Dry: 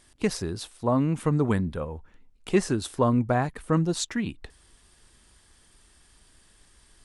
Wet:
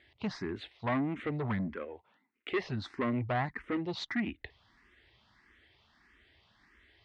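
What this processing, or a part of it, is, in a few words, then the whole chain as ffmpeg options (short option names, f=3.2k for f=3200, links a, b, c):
barber-pole phaser into a guitar amplifier: -filter_complex "[0:a]asettb=1/sr,asplit=3[a][b][c];[a]atrim=end=1.744[d];[b]atrim=start=1.74:end=2.52,asetpts=PTS-STARTPTS,afade=t=in:d=0.004:c=qsin,afade=t=out:st=0.776:d=0.004:c=qsin,highpass=290[e];[c]atrim=start=2.516[f];[d][e]acrossfade=d=0.004:c1=hsin:c2=qsin[g];[g][f]acrossfade=d=0.004:c1=qsin:c2=hsin,asplit=2[h][i];[i]afreqshift=1.6[j];[h][j]amix=inputs=2:normalize=1,asoftclip=type=tanh:threshold=-26dB,highpass=78,equalizer=f=160:t=q:w=4:g=-7,equalizer=f=500:t=q:w=4:g=-5,equalizer=f=2k:t=q:w=4:g=9,lowpass=f=3.9k:w=0.5412,lowpass=f=3.9k:w=1.3066"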